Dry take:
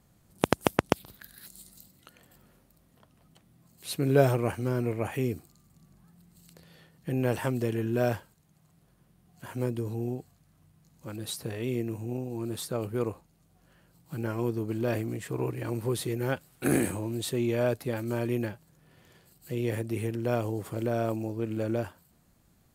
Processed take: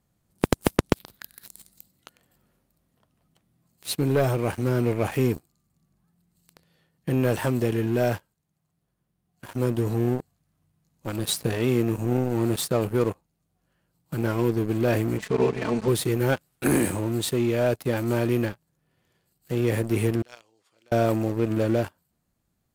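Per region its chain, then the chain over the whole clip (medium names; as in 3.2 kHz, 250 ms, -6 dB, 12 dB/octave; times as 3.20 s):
15.18–15.88 s: low-pass 6.7 kHz 24 dB/octave + comb 4.6 ms, depth 73%
20.22–20.92 s: band-pass filter 5 kHz, Q 1.2 + treble shelf 5.2 kHz -11.5 dB
whole clip: waveshaping leveller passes 3; gain riding 0.5 s; trim -4 dB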